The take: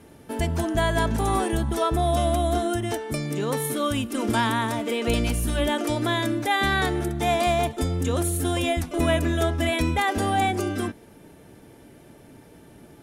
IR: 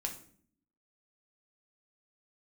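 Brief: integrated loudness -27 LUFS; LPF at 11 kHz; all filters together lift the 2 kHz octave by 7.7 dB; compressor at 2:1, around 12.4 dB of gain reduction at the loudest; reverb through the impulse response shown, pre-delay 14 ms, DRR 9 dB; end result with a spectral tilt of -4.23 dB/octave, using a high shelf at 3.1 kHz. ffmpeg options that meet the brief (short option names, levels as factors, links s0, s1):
-filter_complex "[0:a]lowpass=11000,equalizer=f=2000:t=o:g=8,highshelf=f=3100:g=4,acompressor=threshold=0.0126:ratio=2,asplit=2[s0][s1];[1:a]atrim=start_sample=2205,adelay=14[s2];[s1][s2]afir=irnorm=-1:irlink=0,volume=0.335[s3];[s0][s3]amix=inputs=2:normalize=0,volume=1.78"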